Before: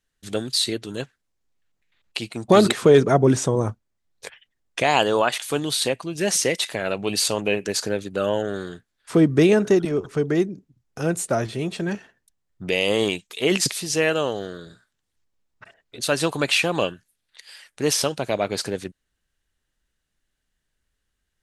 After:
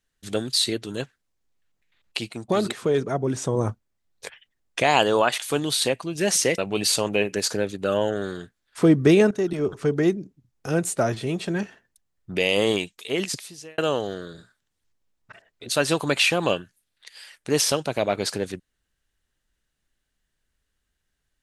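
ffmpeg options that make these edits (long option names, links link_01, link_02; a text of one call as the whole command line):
ffmpeg -i in.wav -filter_complex "[0:a]asplit=6[link_01][link_02][link_03][link_04][link_05][link_06];[link_01]atrim=end=2.54,asetpts=PTS-STARTPTS,afade=type=out:start_time=2.19:duration=0.35:silence=0.375837[link_07];[link_02]atrim=start=2.54:end=3.33,asetpts=PTS-STARTPTS,volume=-8.5dB[link_08];[link_03]atrim=start=3.33:end=6.582,asetpts=PTS-STARTPTS,afade=type=in:duration=0.35:silence=0.375837[link_09];[link_04]atrim=start=6.898:end=9.63,asetpts=PTS-STARTPTS,afade=type=out:start_time=2.728:duration=0.004:curve=hsin:silence=0.223872[link_10];[link_05]atrim=start=9.63:end=14.1,asetpts=PTS-STARTPTS,afade=type=in:duration=0.38:silence=0.223872,afade=type=out:start_time=3.32:duration=1.15[link_11];[link_06]atrim=start=14.1,asetpts=PTS-STARTPTS,afade=type=in:duration=0.004:curve=hsin[link_12];[link_07][link_08][link_09]concat=n=3:v=0:a=1[link_13];[link_10][link_11][link_12]concat=n=3:v=0:a=1[link_14];[link_13][link_14]acrossfade=duration=0.004:curve1=hsin:curve2=hsin" out.wav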